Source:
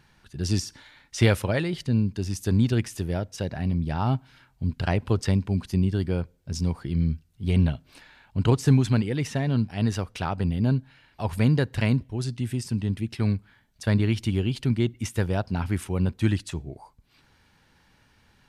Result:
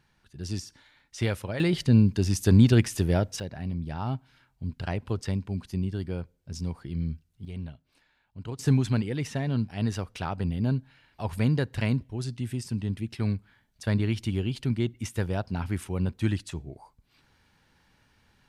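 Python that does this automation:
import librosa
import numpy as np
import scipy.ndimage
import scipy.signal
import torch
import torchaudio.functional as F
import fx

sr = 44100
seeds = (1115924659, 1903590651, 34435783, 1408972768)

y = fx.gain(x, sr, db=fx.steps((0.0, -8.0), (1.6, 4.0), (3.4, -6.5), (7.45, -16.0), (8.59, -3.5)))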